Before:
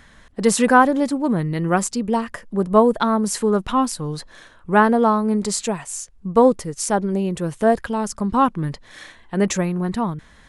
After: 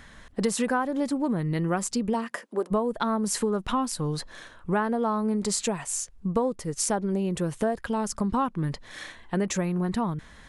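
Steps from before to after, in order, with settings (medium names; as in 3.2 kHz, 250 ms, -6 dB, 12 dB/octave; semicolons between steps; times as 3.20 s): 2.13–2.70 s: high-pass 130 Hz -> 390 Hz 24 dB/octave; compression 6:1, threshold -23 dBFS, peak gain reduction 14.5 dB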